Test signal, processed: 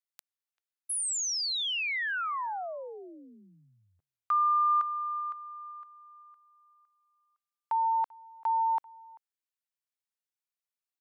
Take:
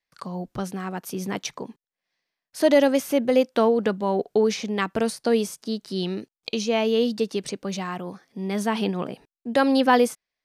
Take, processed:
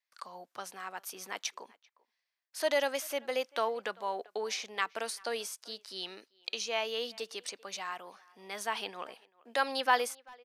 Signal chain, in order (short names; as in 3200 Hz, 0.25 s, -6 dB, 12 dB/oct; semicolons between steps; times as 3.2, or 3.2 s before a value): HPF 840 Hz 12 dB/oct; speakerphone echo 0.39 s, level -24 dB; gain -4.5 dB